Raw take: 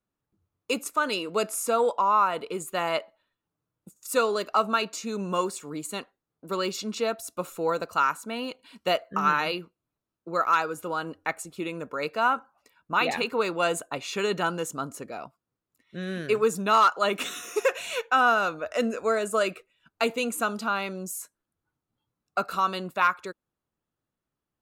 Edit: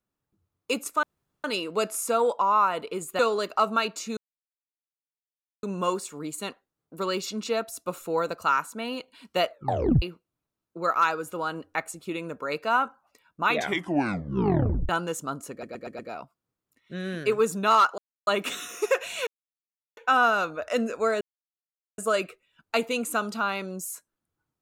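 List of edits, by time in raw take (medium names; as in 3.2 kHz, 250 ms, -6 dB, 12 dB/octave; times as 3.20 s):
1.03 s: insert room tone 0.41 s
2.78–4.16 s: delete
5.14 s: insert silence 1.46 s
9.02 s: tape stop 0.51 s
12.98 s: tape stop 1.42 s
15.02 s: stutter 0.12 s, 5 plays
17.01 s: insert silence 0.29 s
18.01 s: insert silence 0.70 s
19.25 s: insert silence 0.77 s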